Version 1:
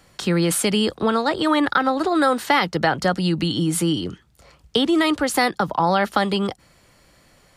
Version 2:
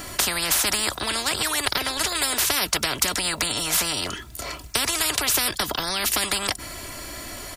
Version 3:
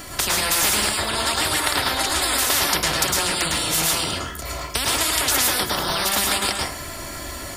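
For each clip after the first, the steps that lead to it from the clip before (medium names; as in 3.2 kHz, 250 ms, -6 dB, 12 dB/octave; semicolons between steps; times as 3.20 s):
treble shelf 8.8 kHz +11.5 dB; comb 3 ms, depth 65%; spectrum-flattening compressor 10:1; trim +1 dB
plate-style reverb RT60 0.52 s, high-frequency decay 0.6×, pre-delay 95 ms, DRR -3 dB; trim -1 dB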